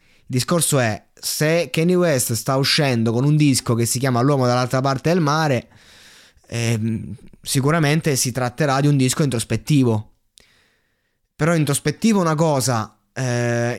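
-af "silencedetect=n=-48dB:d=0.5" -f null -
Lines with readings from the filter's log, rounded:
silence_start: 10.61
silence_end: 11.39 | silence_duration: 0.78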